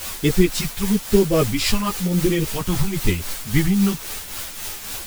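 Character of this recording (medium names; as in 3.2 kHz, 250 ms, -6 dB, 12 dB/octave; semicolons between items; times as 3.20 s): phasing stages 2, 1 Hz, lowest notch 430–1100 Hz; a quantiser's noise floor 6-bit, dither triangular; tremolo triangle 3.7 Hz, depth 60%; a shimmering, thickened sound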